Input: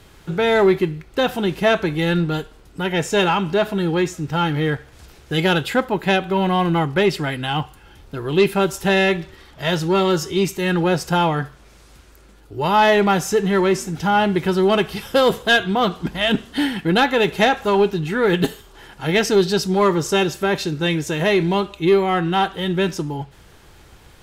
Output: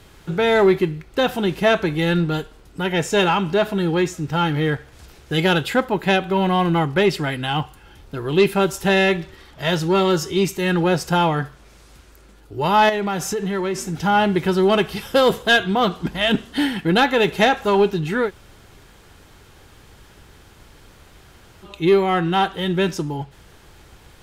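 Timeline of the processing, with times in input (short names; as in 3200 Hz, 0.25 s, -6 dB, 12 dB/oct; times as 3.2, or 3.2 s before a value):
12.89–13.96 compressor, threshold -20 dBFS
18.26–21.67 room tone, crossfade 0.10 s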